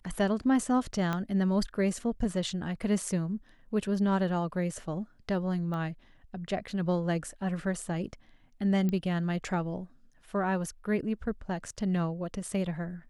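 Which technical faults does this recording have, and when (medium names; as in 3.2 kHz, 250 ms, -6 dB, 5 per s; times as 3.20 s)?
1.13 s: pop -18 dBFS
5.74 s: pop -27 dBFS
8.89 s: pop -20 dBFS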